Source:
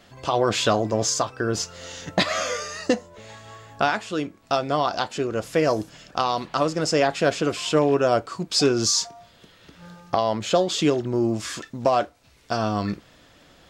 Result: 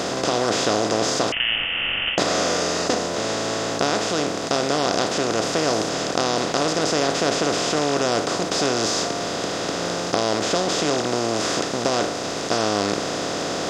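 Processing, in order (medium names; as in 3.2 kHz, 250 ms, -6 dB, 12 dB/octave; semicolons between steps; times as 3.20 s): spectral levelling over time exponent 0.2; 1.32–2.18 s: frequency inversion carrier 3.3 kHz; trim -9 dB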